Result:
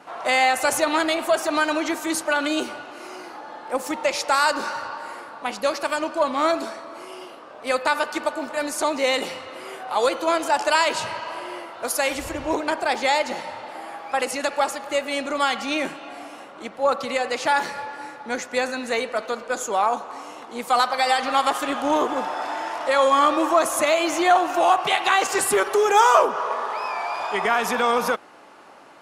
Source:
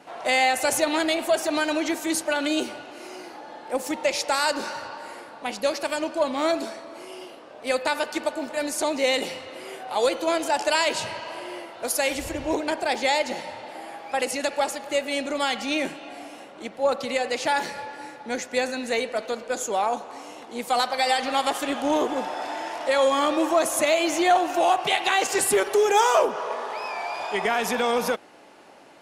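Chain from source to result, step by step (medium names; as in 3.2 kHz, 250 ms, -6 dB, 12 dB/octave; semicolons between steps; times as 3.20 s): peaking EQ 1.2 kHz +8.5 dB 0.78 oct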